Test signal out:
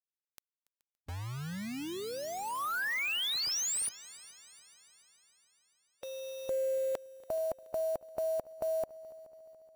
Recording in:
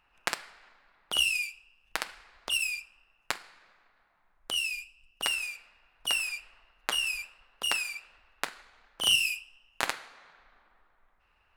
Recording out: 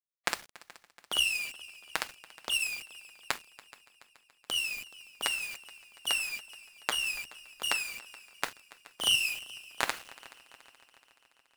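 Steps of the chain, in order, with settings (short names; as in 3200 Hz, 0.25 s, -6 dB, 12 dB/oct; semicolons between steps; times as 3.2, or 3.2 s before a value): bit-crush 7-bit; harmonic-percussive split harmonic -6 dB; multi-head echo 0.142 s, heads second and third, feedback 57%, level -21.5 dB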